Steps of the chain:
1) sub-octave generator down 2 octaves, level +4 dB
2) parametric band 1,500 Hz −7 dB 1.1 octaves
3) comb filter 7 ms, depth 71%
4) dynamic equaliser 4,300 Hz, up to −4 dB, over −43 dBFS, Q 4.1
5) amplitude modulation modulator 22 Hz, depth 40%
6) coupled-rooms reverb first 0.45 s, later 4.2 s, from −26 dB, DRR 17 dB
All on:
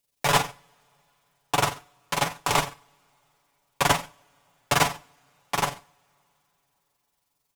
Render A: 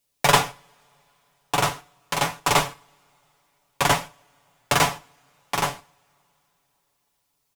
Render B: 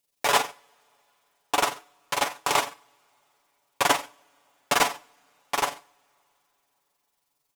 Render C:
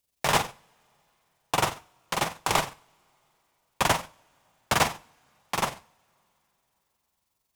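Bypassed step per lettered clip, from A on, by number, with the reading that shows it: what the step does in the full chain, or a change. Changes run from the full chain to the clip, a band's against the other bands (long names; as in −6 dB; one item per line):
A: 5, change in momentary loudness spread +3 LU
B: 1, 125 Hz band −15.0 dB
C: 3, 125 Hz band −1.5 dB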